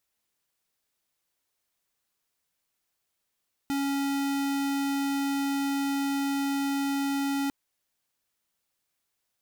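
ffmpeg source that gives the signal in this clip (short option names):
-f lavfi -i "aevalsrc='0.0398*(2*lt(mod(278*t,1),0.5)-1)':d=3.8:s=44100"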